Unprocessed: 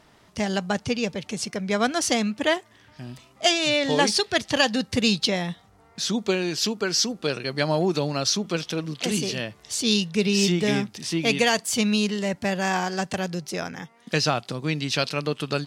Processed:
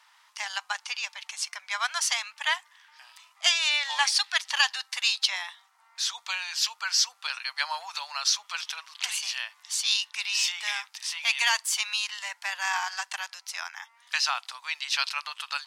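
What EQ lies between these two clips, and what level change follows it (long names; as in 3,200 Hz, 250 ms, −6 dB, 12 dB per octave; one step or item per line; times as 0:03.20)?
elliptic high-pass filter 910 Hz, stop band 60 dB
0.0 dB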